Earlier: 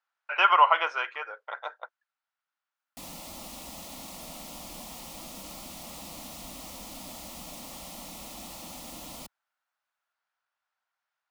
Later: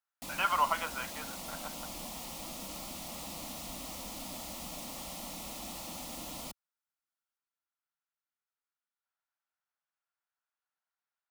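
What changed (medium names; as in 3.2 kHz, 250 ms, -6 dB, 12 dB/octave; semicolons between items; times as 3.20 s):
speech -9.5 dB; background: entry -2.75 s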